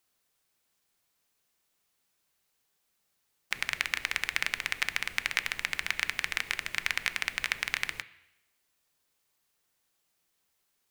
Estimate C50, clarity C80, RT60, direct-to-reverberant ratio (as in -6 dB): 16.5 dB, 18.5 dB, 0.90 s, 11.0 dB